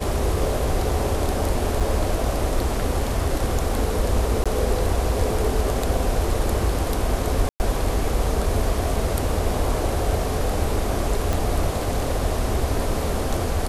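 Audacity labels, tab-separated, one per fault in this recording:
1.800000	1.810000	drop-out 6.4 ms
4.440000	4.460000	drop-out 16 ms
7.490000	7.600000	drop-out 109 ms
11.330000	11.330000	click

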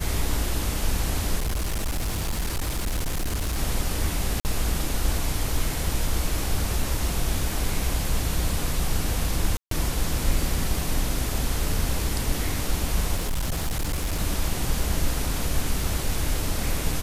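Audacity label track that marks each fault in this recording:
1.380000	3.580000	clipping −22.5 dBFS
4.400000	4.450000	drop-out 49 ms
9.570000	9.710000	drop-out 143 ms
13.160000	14.210000	clipping −22 dBFS

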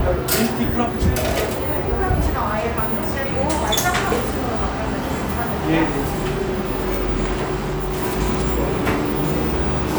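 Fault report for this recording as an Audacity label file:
7.560000	8.040000	clipping −19.5 dBFS

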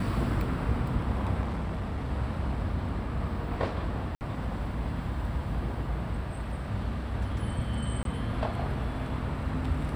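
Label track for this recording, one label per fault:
1.410000	2.110000	clipping −28 dBFS
4.150000	4.210000	drop-out 59 ms
8.030000	8.050000	drop-out 22 ms

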